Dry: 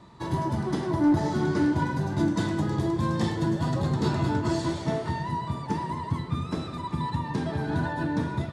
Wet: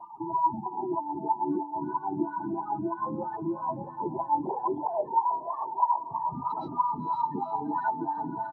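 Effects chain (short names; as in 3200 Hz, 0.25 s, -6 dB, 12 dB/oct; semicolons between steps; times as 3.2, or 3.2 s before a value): 4.41–6.08 sine-wave speech; bell 840 Hz +11 dB 0.35 oct; doubler 44 ms -11 dB; compressor 5:1, threshold -24 dBFS, peak gain reduction 10.5 dB; spectral gate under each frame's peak -10 dB strong; diffused feedback echo 0.495 s, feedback 45%, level -8 dB; vocal rider 0.5 s; tilt +3 dB/oct; LFO band-pass sine 3.1 Hz 260–1500 Hz; gain +8.5 dB; SBC 64 kbps 32000 Hz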